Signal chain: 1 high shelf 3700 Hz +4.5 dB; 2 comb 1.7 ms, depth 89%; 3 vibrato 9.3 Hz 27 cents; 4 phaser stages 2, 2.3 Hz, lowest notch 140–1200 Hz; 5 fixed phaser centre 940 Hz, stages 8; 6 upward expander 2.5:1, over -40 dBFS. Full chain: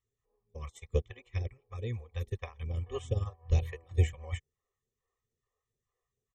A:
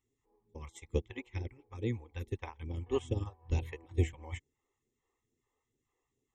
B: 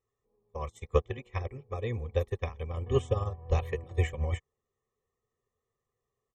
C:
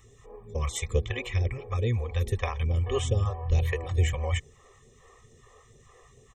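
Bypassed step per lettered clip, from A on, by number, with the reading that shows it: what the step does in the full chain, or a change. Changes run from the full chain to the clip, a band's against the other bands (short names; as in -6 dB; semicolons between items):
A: 2, 250 Hz band +7.5 dB; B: 4, 1 kHz band +7.0 dB; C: 6, 125 Hz band -5.5 dB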